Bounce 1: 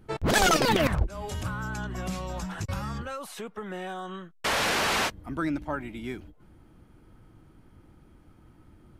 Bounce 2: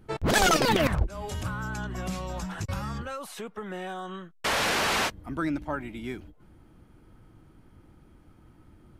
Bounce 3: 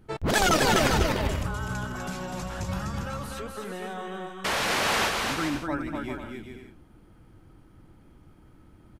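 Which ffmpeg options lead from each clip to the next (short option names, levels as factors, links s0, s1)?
-af anull
-af "aecho=1:1:250|400|490|544|576.4:0.631|0.398|0.251|0.158|0.1,volume=0.891"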